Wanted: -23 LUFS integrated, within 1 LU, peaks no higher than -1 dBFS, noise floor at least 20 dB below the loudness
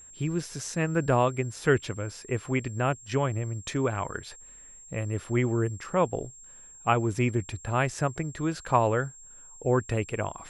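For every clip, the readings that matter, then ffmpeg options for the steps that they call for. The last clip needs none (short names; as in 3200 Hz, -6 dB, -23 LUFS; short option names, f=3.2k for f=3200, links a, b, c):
steady tone 7500 Hz; tone level -47 dBFS; loudness -28.5 LUFS; peak -8.5 dBFS; loudness target -23.0 LUFS
-> -af "bandreject=f=7.5k:w=30"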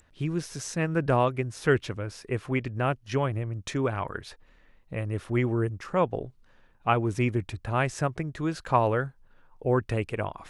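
steady tone none; loudness -28.5 LUFS; peak -8.5 dBFS; loudness target -23.0 LUFS
-> -af "volume=5.5dB"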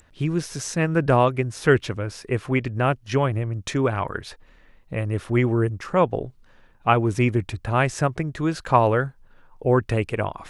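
loudness -23.0 LUFS; peak -3.0 dBFS; noise floor -54 dBFS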